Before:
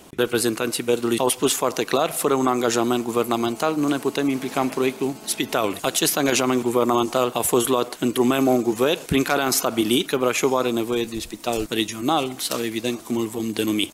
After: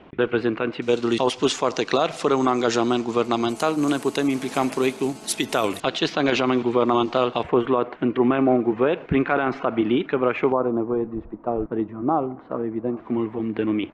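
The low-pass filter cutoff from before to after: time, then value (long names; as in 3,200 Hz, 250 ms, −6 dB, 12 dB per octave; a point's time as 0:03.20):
low-pass filter 24 dB per octave
2,700 Hz
from 0:00.82 6,000 Hz
from 0:03.49 11,000 Hz
from 0:05.80 4,100 Hz
from 0:07.43 2,300 Hz
from 0:10.52 1,200 Hz
from 0:12.97 2,100 Hz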